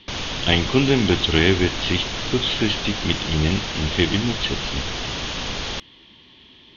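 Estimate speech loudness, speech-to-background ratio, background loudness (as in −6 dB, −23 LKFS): −21.5 LKFS, 5.0 dB, −26.5 LKFS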